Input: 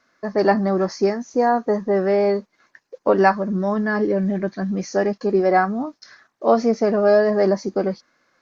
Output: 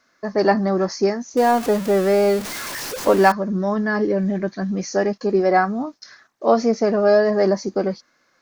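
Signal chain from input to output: 1.37–3.32 zero-crossing step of -26 dBFS; high shelf 4700 Hz +6.5 dB

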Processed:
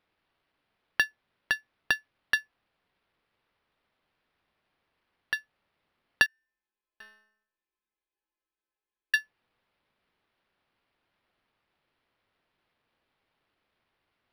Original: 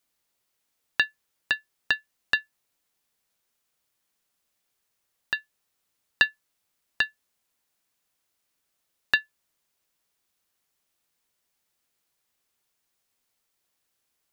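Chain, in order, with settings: 6.26–9.14 metallic resonator 210 Hz, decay 0.76 s, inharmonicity 0.002; decimation joined by straight lines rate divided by 6×

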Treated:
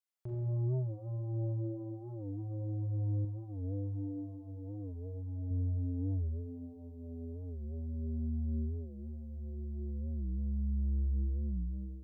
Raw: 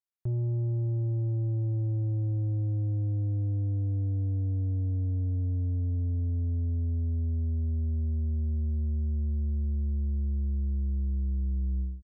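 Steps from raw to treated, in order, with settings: low shelf 210 Hz -11.5 dB; Schroeder reverb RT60 1.6 s, combs from 30 ms, DRR -2.5 dB; 3.24–5.51 dynamic EQ 110 Hz, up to -5 dB, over -40 dBFS, Q 0.91; record warp 45 rpm, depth 160 cents; gain -2.5 dB

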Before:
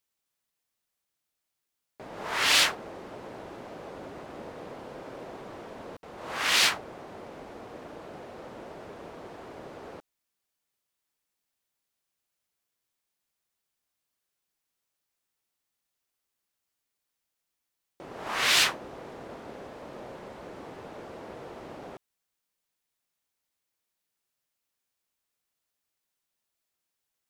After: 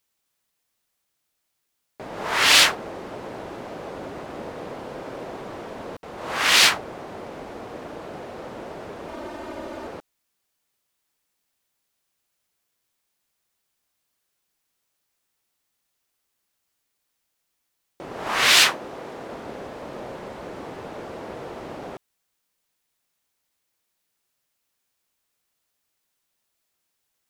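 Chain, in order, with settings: 9.08–9.87 comb 3.3 ms, depth 81%; 18.54–19.33 low shelf 110 Hz -10 dB; gain +7 dB

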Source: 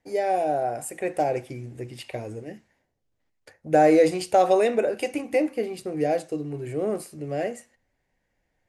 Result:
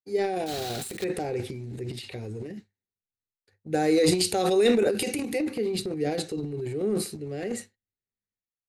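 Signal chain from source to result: 0.46–1.05 block floating point 3-bit; expander -40 dBFS; thirty-one-band EQ 100 Hz +12 dB, 200 Hz +10 dB, 400 Hz +8 dB, 630 Hz -12 dB, 1000 Hz -7 dB, 4000 Hz +12 dB; transient shaper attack 0 dB, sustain +12 dB; 3.74–5.39 high shelf 6200 Hz +9 dB; gain -5.5 dB

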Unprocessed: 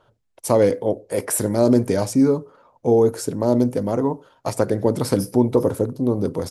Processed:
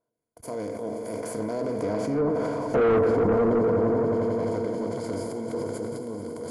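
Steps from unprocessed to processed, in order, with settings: per-bin compression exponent 0.4; Doppler pass-by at 2.9, 13 m/s, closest 2.1 m; gate -48 dBFS, range -32 dB; ripple EQ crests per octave 1.8, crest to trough 10 dB; on a send: swelling echo 88 ms, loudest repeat 5, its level -16 dB; on the sum: soft clip -19.5 dBFS, distortion -4 dB; treble ducked by the level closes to 1600 Hz, closed at -22 dBFS; sustainer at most 21 dB/s; gain +1.5 dB

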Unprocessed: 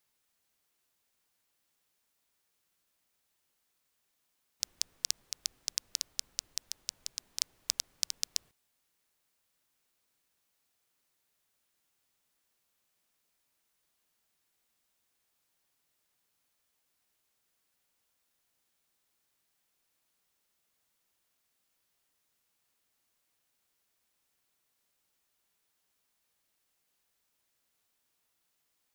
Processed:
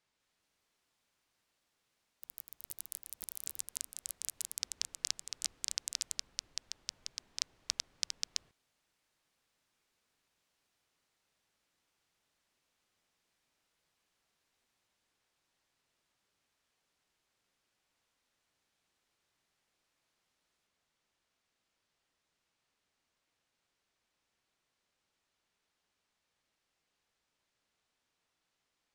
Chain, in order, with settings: air absorption 80 m; echoes that change speed 0.199 s, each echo +6 st, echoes 3; gain +1 dB

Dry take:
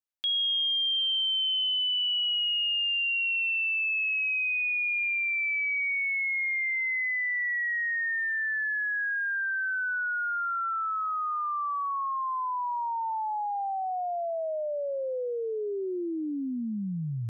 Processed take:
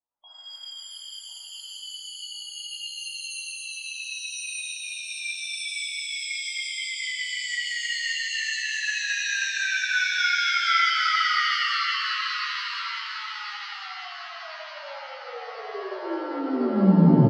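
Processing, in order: in parallel at -9.5 dB: soft clip -33.5 dBFS, distortion -12 dB; 0.73–1.6 on the sum: AM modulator 240 Hz, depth 50%; low-pass sweep 920 Hz -> 180 Hz, 10.99–12.85; loudest bins only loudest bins 32; on a send: feedback echo 1.052 s, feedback 54%, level -9 dB; on the sum: shimmer reverb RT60 2.9 s, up +7 st, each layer -2 dB, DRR -9.5 dB; gain -4 dB

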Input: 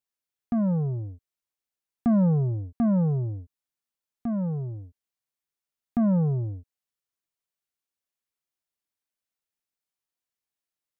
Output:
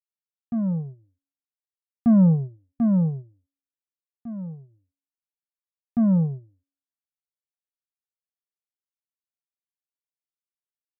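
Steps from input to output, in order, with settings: bell 150 Hz +8.5 dB 1.7 oct; reverb removal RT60 0.76 s; de-hum 277.7 Hz, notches 7; upward expander 2.5:1, over -30 dBFS

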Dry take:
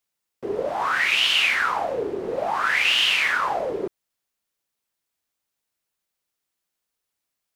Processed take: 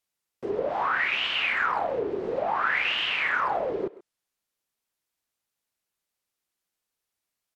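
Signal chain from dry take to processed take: treble ducked by the level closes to 2200 Hz, closed at -20 dBFS; speakerphone echo 0.13 s, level -17 dB; gain -2 dB

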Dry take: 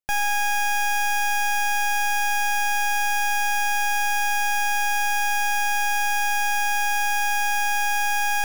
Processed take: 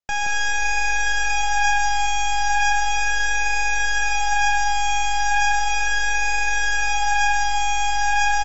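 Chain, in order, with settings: vibrato 0.36 Hz 5.4 cents; echo 0.174 s -5 dB; AAC 24 kbps 48000 Hz

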